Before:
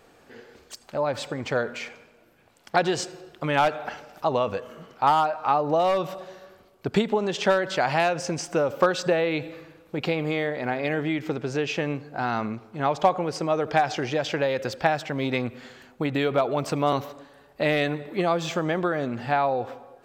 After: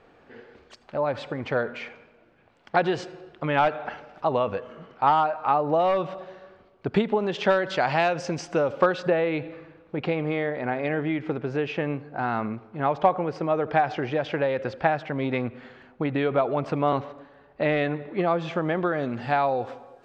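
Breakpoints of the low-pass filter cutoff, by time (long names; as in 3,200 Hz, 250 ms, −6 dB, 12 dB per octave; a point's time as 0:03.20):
0:07.17 2,900 Hz
0:07.69 4,600 Hz
0:08.65 4,600 Hz
0:09.08 2,400 Hz
0:18.60 2,400 Hz
0:18.97 3,800 Hz
0:19.41 7,500 Hz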